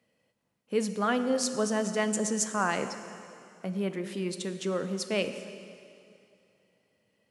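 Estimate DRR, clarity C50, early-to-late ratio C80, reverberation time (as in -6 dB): 8.5 dB, 9.5 dB, 10.5 dB, 2.6 s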